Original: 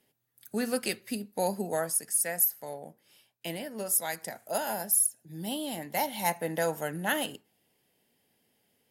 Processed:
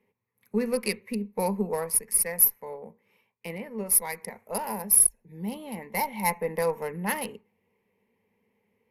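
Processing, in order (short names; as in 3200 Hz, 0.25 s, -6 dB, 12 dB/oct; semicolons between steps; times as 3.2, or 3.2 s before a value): Wiener smoothing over 9 samples; added harmonics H 8 -31 dB, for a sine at -12.5 dBFS; ripple EQ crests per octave 0.87, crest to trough 14 dB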